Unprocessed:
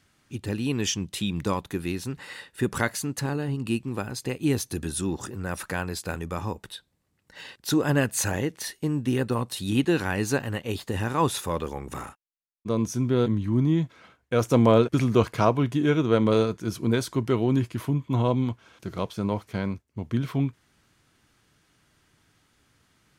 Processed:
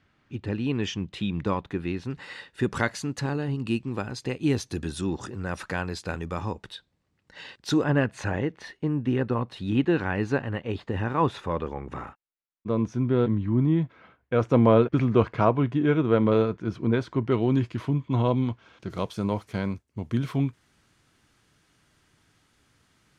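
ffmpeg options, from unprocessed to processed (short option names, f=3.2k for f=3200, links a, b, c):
-af "asetnsamples=n=441:p=0,asendcmd='2.1 lowpass f 5500;7.84 lowpass f 2400;17.32 lowpass f 4600;18.9 lowpass f 12000',lowpass=2.9k"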